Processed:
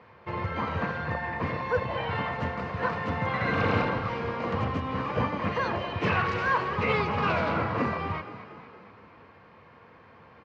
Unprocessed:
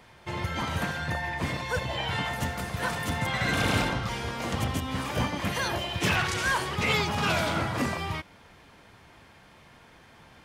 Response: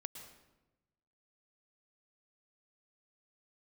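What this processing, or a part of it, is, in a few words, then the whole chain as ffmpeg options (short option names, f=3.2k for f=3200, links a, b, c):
frequency-shifting delay pedal into a guitar cabinet: -filter_complex "[0:a]asplit=7[a][b][c][d][e][f][g];[b]adelay=234,afreqshift=30,volume=-13.5dB[h];[c]adelay=468,afreqshift=60,volume=-18.2dB[i];[d]adelay=702,afreqshift=90,volume=-23dB[j];[e]adelay=936,afreqshift=120,volume=-27.7dB[k];[f]adelay=1170,afreqshift=150,volume=-32.4dB[l];[g]adelay=1404,afreqshift=180,volume=-37.2dB[m];[a][h][i][j][k][l][m]amix=inputs=7:normalize=0,highpass=81,equalizer=f=94:t=q:w=4:g=6,equalizer=f=210:t=q:w=4:g=3,equalizer=f=480:t=q:w=4:g=9,equalizer=f=1.1k:t=q:w=4:g=8,equalizer=f=3.4k:t=q:w=4:g=-10,lowpass=f=3.8k:w=0.5412,lowpass=f=3.8k:w=1.3066,volume=-2dB"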